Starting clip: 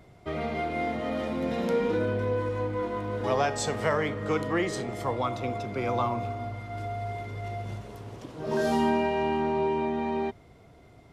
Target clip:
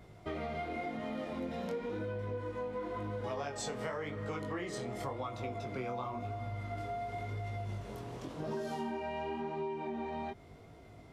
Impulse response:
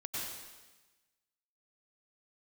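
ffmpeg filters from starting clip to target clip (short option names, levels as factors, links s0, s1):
-af "flanger=delay=18:depth=6.4:speed=0.93,acompressor=threshold=0.0126:ratio=6,volume=1.26"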